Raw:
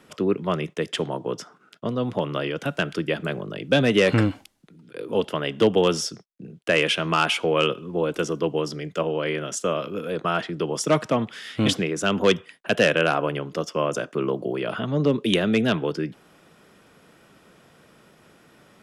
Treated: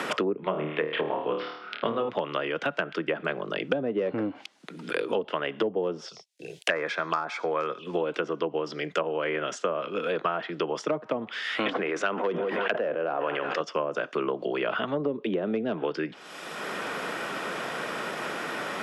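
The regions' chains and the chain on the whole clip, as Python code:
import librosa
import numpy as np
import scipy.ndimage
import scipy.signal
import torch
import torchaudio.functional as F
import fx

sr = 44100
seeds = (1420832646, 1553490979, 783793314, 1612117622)

y = fx.chain(x, sr, fx.steep_lowpass(hz=4200.0, slope=48),
    fx.peak_eq(hz=2300.0, db=5.0, octaves=0.32),
    fx.room_flutter(wall_m=4.5, rt60_s=0.47), at=(0.4, 2.09))
y = fx.chain(y, sr, fx.tilt_shelf(db=-6.0, hz=1100.0),
    fx.env_phaser(low_hz=180.0, high_hz=2900.0, full_db=-20.5), at=(6.08, 7.87))
y = fx.chain(y, sr, fx.highpass(hz=510.0, slope=6),
    fx.echo_wet_lowpass(ms=183, feedback_pct=81, hz=2400.0, wet_db=-22),
    fx.sustainer(db_per_s=31.0), at=(11.43, 13.6))
y = fx.env_lowpass_down(y, sr, base_hz=580.0, full_db=-17.5)
y = fx.weighting(y, sr, curve='A')
y = fx.band_squash(y, sr, depth_pct=100)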